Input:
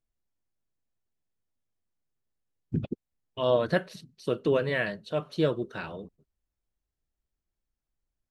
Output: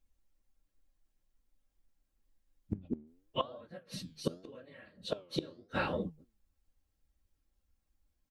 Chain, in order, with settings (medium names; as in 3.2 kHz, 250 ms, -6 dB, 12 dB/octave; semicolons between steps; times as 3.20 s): phase randomisation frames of 50 ms; bass shelf 170 Hz +4.5 dB; comb 3.7 ms, depth 44%; inverted gate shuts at -23 dBFS, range -30 dB; flange 0.83 Hz, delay 4.7 ms, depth 8.9 ms, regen +86%; trim +8 dB